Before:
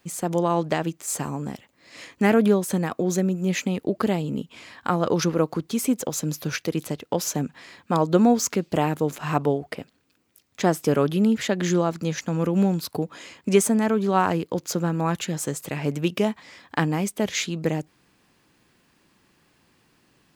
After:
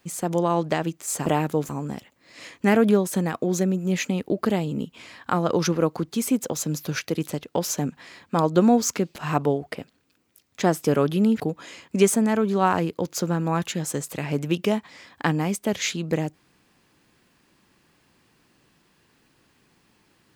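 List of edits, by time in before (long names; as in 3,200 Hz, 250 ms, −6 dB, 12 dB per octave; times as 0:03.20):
0:08.73–0:09.16: move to 0:01.26
0:11.40–0:12.93: remove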